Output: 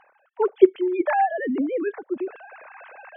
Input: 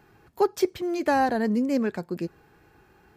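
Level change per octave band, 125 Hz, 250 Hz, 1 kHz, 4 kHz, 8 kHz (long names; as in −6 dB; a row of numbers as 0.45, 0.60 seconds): below −15 dB, +1.0 dB, +2.5 dB, can't be measured, below −35 dB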